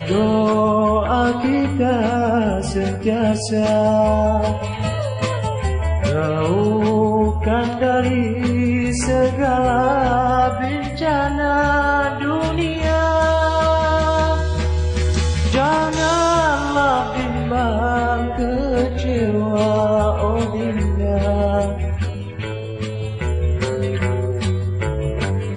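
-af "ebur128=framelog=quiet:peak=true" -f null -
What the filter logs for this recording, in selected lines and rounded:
Integrated loudness:
  I:         -18.6 LUFS
  Threshold: -28.6 LUFS
Loudness range:
  LRA:         3.9 LU
  Threshold: -38.6 LUFS
  LRA low:   -21.5 LUFS
  LRA high:  -17.6 LUFS
True peak:
  Peak:       -5.2 dBFS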